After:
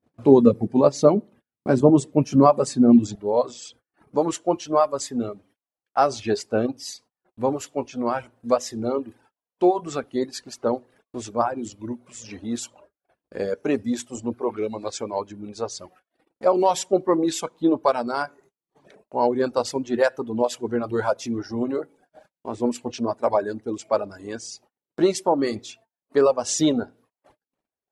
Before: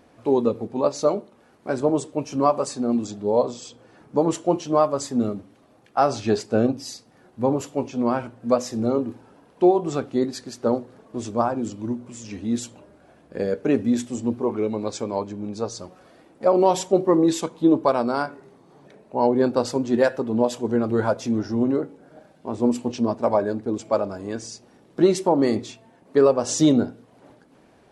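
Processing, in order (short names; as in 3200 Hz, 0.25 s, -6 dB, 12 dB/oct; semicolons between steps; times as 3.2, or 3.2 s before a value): reverb removal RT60 0.79 s; gate -52 dBFS, range -38 dB; bell 160 Hz +10.5 dB 2.4 oct, from 3.15 s -6.5 dB; gain +1.5 dB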